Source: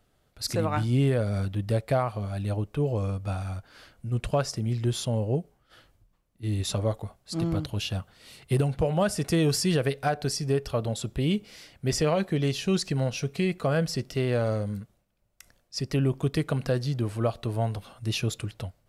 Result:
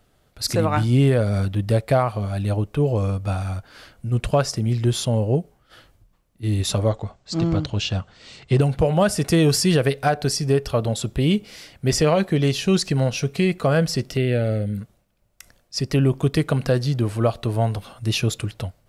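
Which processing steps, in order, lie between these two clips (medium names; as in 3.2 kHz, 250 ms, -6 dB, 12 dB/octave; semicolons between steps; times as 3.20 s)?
6.89–8.61 s: steep low-pass 7.7 kHz 48 dB/octave; 14.17–14.78 s: static phaser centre 2.5 kHz, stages 4; trim +6.5 dB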